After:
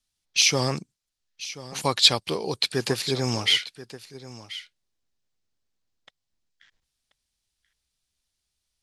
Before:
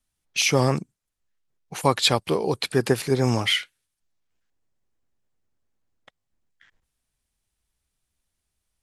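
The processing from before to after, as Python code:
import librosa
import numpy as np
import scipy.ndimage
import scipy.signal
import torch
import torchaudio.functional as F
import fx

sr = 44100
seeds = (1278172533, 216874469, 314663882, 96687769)

p1 = fx.peak_eq(x, sr, hz=4600.0, db=11.5, octaves=1.6)
p2 = p1 + fx.echo_single(p1, sr, ms=1033, db=-16.0, dry=0)
y = p2 * 10.0 ** (-5.5 / 20.0)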